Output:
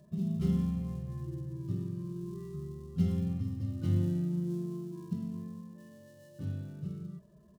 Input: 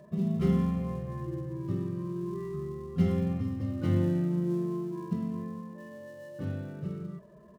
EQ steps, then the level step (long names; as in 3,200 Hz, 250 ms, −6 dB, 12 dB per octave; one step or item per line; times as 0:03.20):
octave-band graphic EQ 250/500/1,000/2,000 Hz −4/−10/−9/−10 dB
0.0 dB